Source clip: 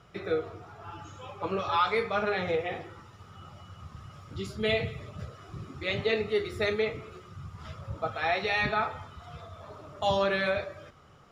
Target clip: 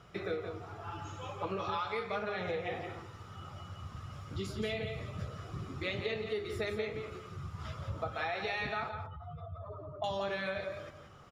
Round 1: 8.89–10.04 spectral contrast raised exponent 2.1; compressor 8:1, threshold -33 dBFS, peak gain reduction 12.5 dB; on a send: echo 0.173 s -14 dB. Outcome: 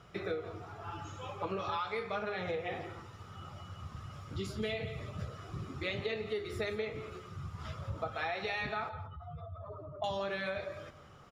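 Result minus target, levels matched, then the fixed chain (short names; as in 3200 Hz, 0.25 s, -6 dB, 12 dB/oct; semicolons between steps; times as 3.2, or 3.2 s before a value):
echo-to-direct -6.5 dB
8.89–10.04 spectral contrast raised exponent 2.1; compressor 8:1, threshold -33 dBFS, peak gain reduction 12.5 dB; on a send: echo 0.173 s -7.5 dB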